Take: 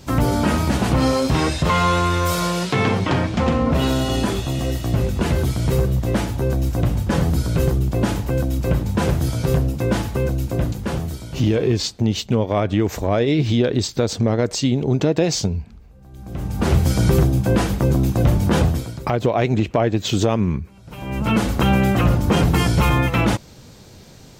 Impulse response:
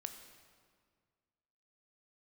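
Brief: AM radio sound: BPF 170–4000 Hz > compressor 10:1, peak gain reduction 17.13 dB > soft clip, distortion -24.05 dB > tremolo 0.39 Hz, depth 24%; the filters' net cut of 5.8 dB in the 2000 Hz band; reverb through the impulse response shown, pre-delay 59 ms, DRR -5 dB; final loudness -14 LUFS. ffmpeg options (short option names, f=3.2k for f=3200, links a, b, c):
-filter_complex "[0:a]equalizer=f=2k:t=o:g=-7.5,asplit=2[a][b];[1:a]atrim=start_sample=2205,adelay=59[c];[b][c]afir=irnorm=-1:irlink=0,volume=8dB[d];[a][d]amix=inputs=2:normalize=0,highpass=170,lowpass=4k,acompressor=threshold=-25dB:ratio=10,asoftclip=threshold=-18dB,tremolo=f=0.39:d=0.24,volume=17dB"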